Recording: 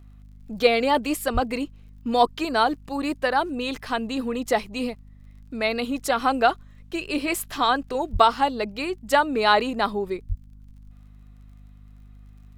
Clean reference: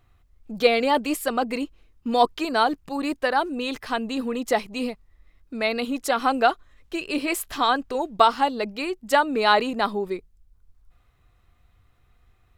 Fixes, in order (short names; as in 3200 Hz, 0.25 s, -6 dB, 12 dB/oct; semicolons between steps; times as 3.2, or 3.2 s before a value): de-click; de-hum 50.7 Hz, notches 5; 1.33–1.45 HPF 140 Hz 24 dB/oct; 8.12–8.24 HPF 140 Hz 24 dB/oct; 10.28–10.4 HPF 140 Hz 24 dB/oct